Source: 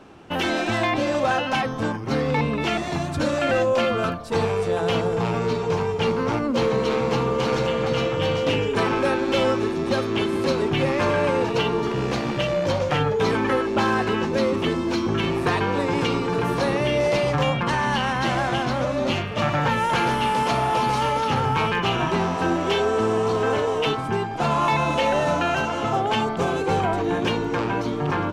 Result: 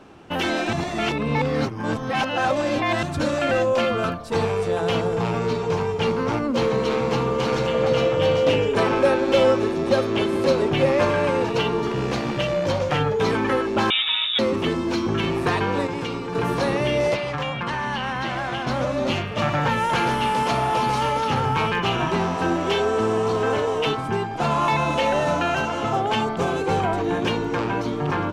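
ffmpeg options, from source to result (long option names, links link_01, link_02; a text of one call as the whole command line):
ffmpeg -i in.wav -filter_complex "[0:a]asettb=1/sr,asplit=3[link_01][link_02][link_03];[link_01]atrim=end=7.744[link_04];[link_02]atrim=start=7.74:end=11.05,asetpts=PTS-STARTPTS,afade=type=in:duration=0.004:curve=qsin,afade=type=out:start_time=3.306:duration=0.004:curve=qsin,equalizer=frequency=570:width_type=o:width=0.59:gain=6.5[link_05];[link_03]atrim=start=11.046[link_06];[link_04][link_05]acrossfade=duration=0.004:curve1=hsin:curve2=qsin[link_07];[link_07][link_06]acrossfade=duration=0.004:curve1=qsin:curve2=hsin,asettb=1/sr,asplit=3[link_08][link_09][link_10];[link_08]atrim=end=13.904[link_11];[link_09]atrim=start=13.9:end=14.39,asetpts=PTS-STARTPTS,afade=type=in:duration=0.004:curve=qsin,afade=type=out:start_time=0.486:duration=0.004:curve=qsin,lowpass=frequency=3300:width_type=q:width=0.5098,lowpass=frequency=3300:width_type=q:width=0.6013,lowpass=frequency=3300:width_type=q:width=0.9,lowpass=frequency=3300:width_type=q:width=2.563,afreqshift=-3900[link_12];[link_10]atrim=start=14.386[link_13];[link_11][link_12]acrossfade=duration=0.004:curve1=hsin:curve2=qsin[link_14];[link_14][link_13]acrossfade=duration=0.004:curve1=qsin:curve2=hsin,asettb=1/sr,asplit=3[link_15][link_16][link_17];[link_15]atrim=end=17.144[link_18];[link_16]atrim=start=17.14:end=18.67,asetpts=PTS-STARTPTS,afade=type=in:duration=0.004:curve=qsin,afade=type=out:start_time=1.526:duration=0.004:curve=qsin,acrossover=split=970|4500[link_19][link_20][link_21];[link_19]acompressor=threshold=-28dB:ratio=4[link_22];[link_20]acompressor=threshold=-27dB:ratio=4[link_23];[link_21]acompressor=threshold=-53dB:ratio=4[link_24];[link_22][link_23][link_24]amix=inputs=3:normalize=0[link_25];[link_17]atrim=start=18.666[link_26];[link_18][link_25]acrossfade=duration=0.004:curve1=hsin:curve2=qsin[link_27];[link_27][link_26]acrossfade=duration=0.004:curve1=qsin:curve2=hsin,asplit=5[link_28][link_29][link_30][link_31][link_32];[link_28]atrim=end=0.732[link_33];[link_29]atrim=start=0.728:end=3.032,asetpts=PTS-STARTPTS,areverse[link_34];[link_30]atrim=start=3.028:end=15.872[link_35];[link_31]atrim=start=15.868:end=16.352,asetpts=PTS-STARTPTS,volume=-5.5dB[link_36];[link_32]atrim=start=16.348[link_37];[link_33][link_34]acrossfade=duration=0.004:curve1=hsin:curve2=hsin[link_38];[link_38][link_35]acrossfade=duration=0.004:curve1=hsin:curve2=hsin[link_39];[link_39][link_36]acrossfade=duration=0.004:curve1=hsin:curve2=hsin[link_40];[link_40][link_37]acrossfade=duration=0.004:curve1=hsin:curve2=hsin" out.wav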